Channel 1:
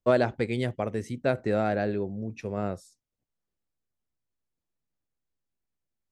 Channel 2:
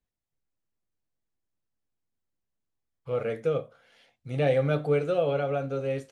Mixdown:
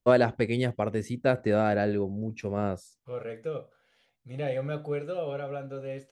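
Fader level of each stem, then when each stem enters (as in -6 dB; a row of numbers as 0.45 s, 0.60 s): +1.5 dB, -7.0 dB; 0.00 s, 0.00 s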